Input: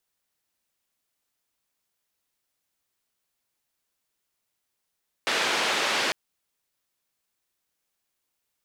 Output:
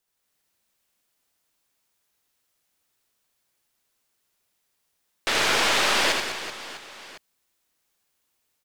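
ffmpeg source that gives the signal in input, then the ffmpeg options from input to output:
-f lavfi -i "anoisesrc=c=white:d=0.85:r=44100:seed=1,highpass=f=310,lowpass=f=3400,volume=-12.5dB"
-filter_complex "[0:a]dynaudnorm=f=140:g=3:m=3.5dB,aeval=exprs='clip(val(0),-1,0.0631)':c=same,asplit=2[a][b];[b]aecho=0:1:80|200|380|650|1055:0.631|0.398|0.251|0.158|0.1[c];[a][c]amix=inputs=2:normalize=0"

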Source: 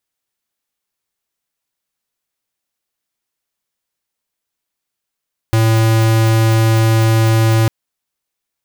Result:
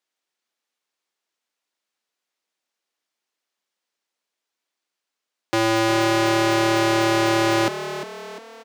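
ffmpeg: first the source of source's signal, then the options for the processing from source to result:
-f lavfi -i "aevalsrc='0.266*(2*lt(mod(112*t,1),0.5)-1)':d=2.15:s=44100"
-filter_complex "[0:a]highpass=120,acrossover=split=210 7400:gain=0.0794 1 0.224[a][b][c];[a][b][c]amix=inputs=3:normalize=0,asplit=2[d][e];[e]asplit=5[f][g][h][i][j];[f]adelay=350,afreqshift=37,volume=-11dB[k];[g]adelay=700,afreqshift=74,volume=-17.6dB[l];[h]adelay=1050,afreqshift=111,volume=-24.1dB[m];[i]adelay=1400,afreqshift=148,volume=-30.7dB[n];[j]adelay=1750,afreqshift=185,volume=-37.2dB[o];[k][l][m][n][o]amix=inputs=5:normalize=0[p];[d][p]amix=inputs=2:normalize=0"

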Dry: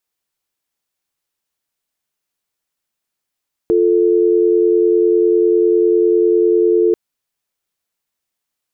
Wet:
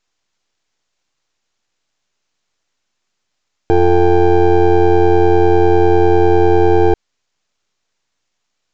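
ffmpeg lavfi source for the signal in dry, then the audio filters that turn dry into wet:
-f lavfi -i "aevalsrc='0.237*(sin(2*PI*350*t)+sin(2*PI*440*t))':d=3.24:s=44100"
-af "aeval=exprs='max(val(0),0)':c=same,aresample=16000,aresample=44100,alimiter=level_in=13.5dB:limit=-1dB:release=50:level=0:latency=1"

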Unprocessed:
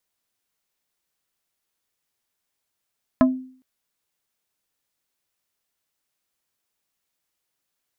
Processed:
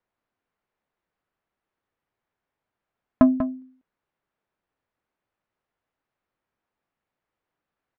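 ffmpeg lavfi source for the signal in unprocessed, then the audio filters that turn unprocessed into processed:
-f lavfi -i "aevalsrc='0.316*pow(10,-3*t/0.5)*sin(2*PI*258*t)+0.2*pow(10,-3*t/0.167)*sin(2*PI*645*t)+0.126*pow(10,-3*t/0.095)*sin(2*PI*1032*t)+0.0794*pow(10,-3*t/0.072)*sin(2*PI*1290*t)+0.0501*pow(10,-3*t/0.053)*sin(2*PI*1677*t)':d=0.41:s=44100"
-filter_complex "[0:a]lowpass=1.6k,asplit=2[a][b];[b]asoftclip=type=tanh:threshold=-16dB,volume=-5dB[c];[a][c]amix=inputs=2:normalize=0,asplit=2[d][e];[e]adelay=192.4,volume=-9dB,highshelf=f=4k:g=-4.33[f];[d][f]amix=inputs=2:normalize=0"

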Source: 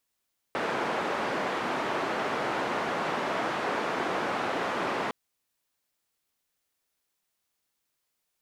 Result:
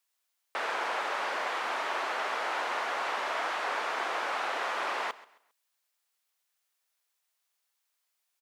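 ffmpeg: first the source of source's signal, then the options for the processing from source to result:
-f lavfi -i "anoisesrc=c=white:d=4.56:r=44100:seed=1,highpass=f=230,lowpass=f=1200,volume=-12.1dB"
-af "highpass=710,aecho=1:1:134|268|402:0.112|0.0348|0.0108"

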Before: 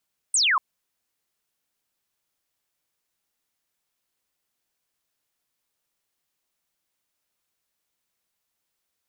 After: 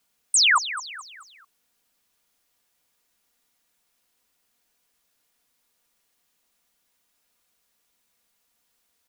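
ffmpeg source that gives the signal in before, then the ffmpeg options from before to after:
-f lavfi -i "aevalsrc='0.133*clip(t/0.002,0,1)*clip((0.24-t)/0.002,0,1)*sin(2*PI*9100*0.24/log(970/9100)*(exp(log(970/9100)*t/0.24)-1))':d=0.24:s=44100"
-filter_complex "[0:a]aecho=1:1:4.2:0.4,asplit=2[a][b];[b]alimiter=level_in=1.5dB:limit=-24dB:level=0:latency=1:release=65,volume=-1.5dB,volume=1.5dB[c];[a][c]amix=inputs=2:normalize=0,asplit=5[d][e][f][g][h];[e]adelay=216,afreqshift=35,volume=-13dB[i];[f]adelay=432,afreqshift=70,volume=-20.3dB[j];[g]adelay=648,afreqshift=105,volume=-27.7dB[k];[h]adelay=864,afreqshift=140,volume=-35dB[l];[d][i][j][k][l]amix=inputs=5:normalize=0"

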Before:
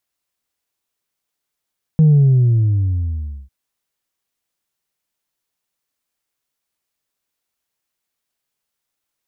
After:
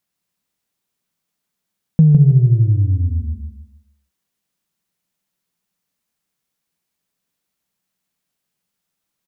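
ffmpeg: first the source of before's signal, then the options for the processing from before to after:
-f lavfi -i "aevalsrc='0.422*clip((1.5-t)/1.46,0,1)*tanh(1.12*sin(2*PI*160*1.5/log(65/160)*(exp(log(65/160)*t/1.5)-1)))/tanh(1.12)':d=1.5:s=44100"
-filter_complex "[0:a]equalizer=f=180:t=o:w=0.76:g=13,acompressor=threshold=-15dB:ratio=2,asplit=2[a][b];[b]aecho=0:1:157|314|471|628:0.531|0.17|0.0544|0.0174[c];[a][c]amix=inputs=2:normalize=0"

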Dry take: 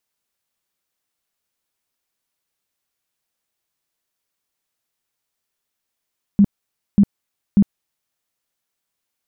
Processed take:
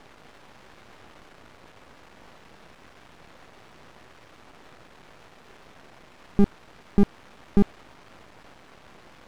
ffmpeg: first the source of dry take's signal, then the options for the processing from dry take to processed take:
-f lavfi -i "aevalsrc='0.422*sin(2*PI*201*mod(t,0.59))*lt(mod(t,0.59),11/201)':d=1.77:s=44100"
-af "aeval=exprs='val(0)+0.5*0.0376*sgn(val(0))':c=same,adynamicsmooth=sensitivity=4.5:basefreq=910,aeval=exprs='max(val(0),0)':c=same"

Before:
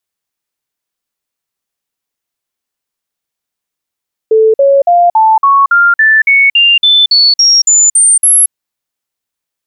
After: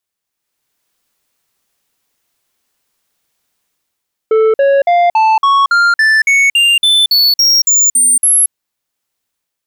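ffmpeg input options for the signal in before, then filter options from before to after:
-f lavfi -i "aevalsrc='0.668*clip(min(mod(t,0.28),0.23-mod(t,0.28))/0.005,0,1)*sin(2*PI*440*pow(2,floor(t/0.28)/3)*mod(t,0.28))':d=4.2:s=44100"
-af "dynaudnorm=f=130:g=9:m=12.5dB,asoftclip=type=tanh:threshold=-7.5dB"

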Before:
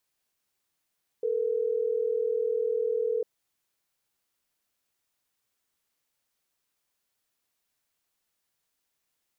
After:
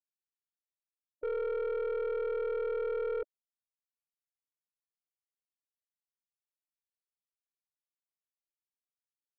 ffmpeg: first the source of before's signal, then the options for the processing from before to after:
-f lavfi -i "aevalsrc='0.0422*(sin(2*PI*440*t)+sin(2*PI*480*t))*clip(min(mod(t,6),2-mod(t,6))/0.005,0,1)':d=3.12:s=44100"
-af "afftfilt=real='re*gte(hypot(re,im),0.0282)':imag='im*gte(hypot(re,im),0.0282)':win_size=1024:overlap=0.75,aeval=exprs='(tanh(31.6*val(0)+0.15)-tanh(0.15))/31.6':c=same"

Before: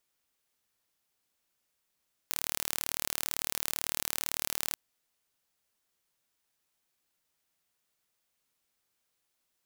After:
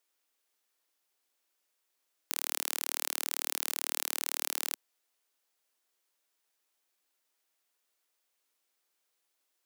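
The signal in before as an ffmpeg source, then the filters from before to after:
-f lavfi -i "aevalsrc='0.596*eq(mod(n,1164),0)':d=2.43:s=44100"
-af "highpass=f=290:w=0.5412,highpass=f=290:w=1.3066"

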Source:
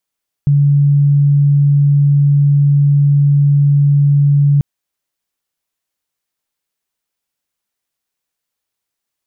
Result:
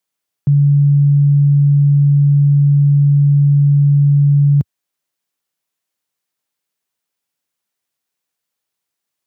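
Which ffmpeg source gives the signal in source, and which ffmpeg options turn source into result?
-f lavfi -i "sine=f=143:d=4.14:r=44100,volume=11.06dB"
-af "highpass=f=92:w=0.5412,highpass=f=92:w=1.3066"

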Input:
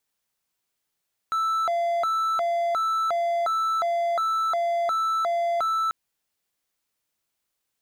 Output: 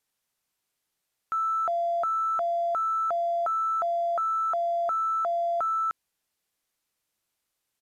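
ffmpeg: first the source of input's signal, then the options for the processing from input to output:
-f lavfi -i "aevalsrc='0.106*(1-4*abs(mod((1002.5*t+317.5/1.4*(0.5-abs(mod(1.4*t,1)-0.5)))+0.25,1)-0.5))':d=4.59:s=44100"
-af "asoftclip=type=tanh:threshold=-22dB,aresample=32000,aresample=44100"

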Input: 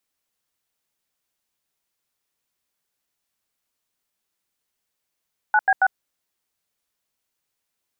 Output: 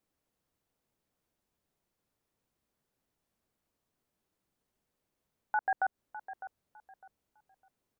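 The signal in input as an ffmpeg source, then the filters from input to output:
-f lavfi -i "aevalsrc='0.158*clip(min(mod(t,0.138),0.051-mod(t,0.138))/0.002,0,1)*(eq(floor(t/0.138),0)*(sin(2*PI*852*mod(t,0.138))+sin(2*PI*1477*mod(t,0.138)))+eq(floor(t/0.138),1)*(sin(2*PI*770*mod(t,0.138))+sin(2*PI*1633*mod(t,0.138)))+eq(floor(t/0.138),2)*(sin(2*PI*770*mod(t,0.138))+sin(2*PI*1477*mod(t,0.138))))':d=0.414:s=44100"
-filter_complex "[0:a]tiltshelf=f=970:g=8.5,alimiter=limit=-22dB:level=0:latency=1:release=135,asplit=2[a][b];[b]adelay=605,lowpass=f=1.8k:p=1,volume=-12.5dB,asplit=2[c][d];[d]adelay=605,lowpass=f=1.8k:p=1,volume=0.28,asplit=2[e][f];[f]adelay=605,lowpass=f=1.8k:p=1,volume=0.28[g];[a][c][e][g]amix=inputs=4:normalize=0"

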